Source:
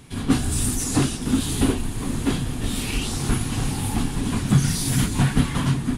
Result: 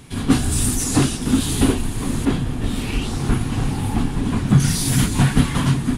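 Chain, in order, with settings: 2.25–4.60 s: treble shelf 3.3 kHz -10 dB; trim +3.5 dB

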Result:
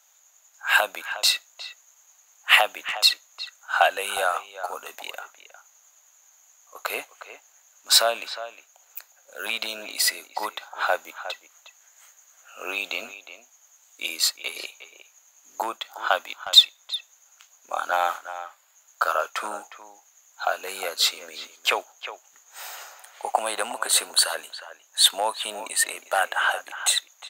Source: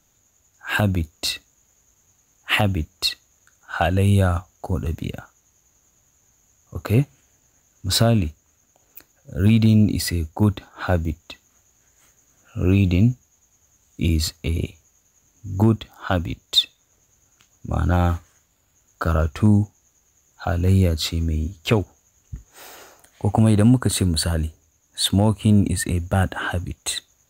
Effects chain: high-pass 680 Hz 24 dB/octave; speakerphone echo 360 ms, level -12 dB; trim +4.5 dB

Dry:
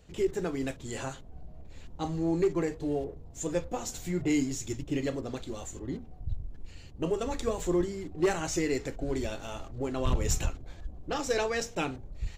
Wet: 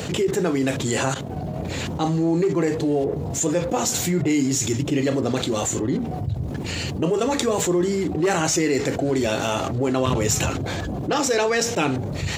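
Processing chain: 1.14–1.56 s: expander -38 dBFS; high-pass 100 Hz 24 dB/octave; level flattener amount 70%; trim +3.5 dB

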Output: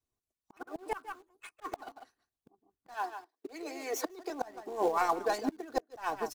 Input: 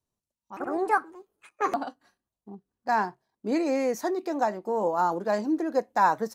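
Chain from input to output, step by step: tracing distortion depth 0.098 ms; comb 2.7 ms, depth 86%; on a send: delay 149 ms -13.5 dB; on the sum: slow attack 423 ms; harmonic-percussive split harmonic -16 dB; 2.94–4.30 s: steep high-pass 280 Hz 48 dB/octave; in parallel at -10.5 dB: companded quantiser 4-bit

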